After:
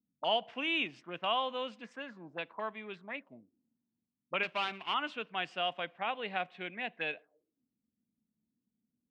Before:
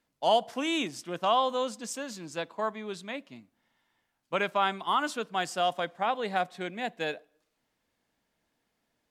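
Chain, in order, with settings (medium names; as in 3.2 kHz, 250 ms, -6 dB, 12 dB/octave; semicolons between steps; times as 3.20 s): 4.43–4.94 s: dead-time distortion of 0.18 ms; high-pass 65 Hz; touch-sensitive low-pass 220–2700 Hz up, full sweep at -32 dBFS; trim -8.5 dB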